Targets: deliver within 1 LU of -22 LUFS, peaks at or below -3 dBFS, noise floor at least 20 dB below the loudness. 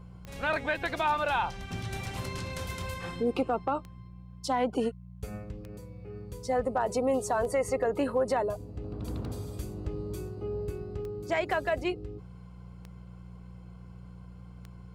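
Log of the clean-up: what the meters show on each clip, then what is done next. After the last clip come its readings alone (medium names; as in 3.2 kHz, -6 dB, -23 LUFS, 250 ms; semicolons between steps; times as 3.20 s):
clicks found 9; hum 60 Hz; highest harmonic 180 Hz; hum level -44 dBFS; loudness -32.0 LUFS; peak level -18.0 dBFS; loudness target -22.0 LUFS
-> de-click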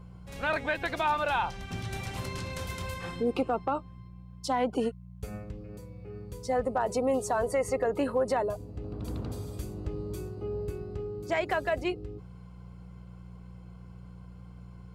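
clicks found 0; hum 60 Hz; highest harmonic 180 Hz; hum level -44 dBFS
-> de-hum 60 Hz, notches 3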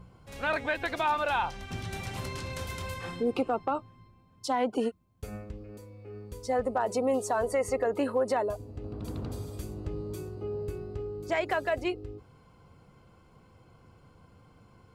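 hum not found; loudness -32.0 LUFS; peak level -18.5 dBFS; loudness target -22.0 LUFS
-> trim +10 dB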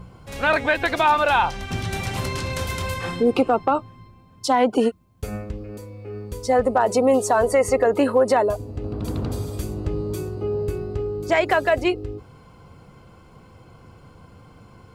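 loudness -22.0 LUFS; peak level -8.5 dBFS; noise floor -49 dBFS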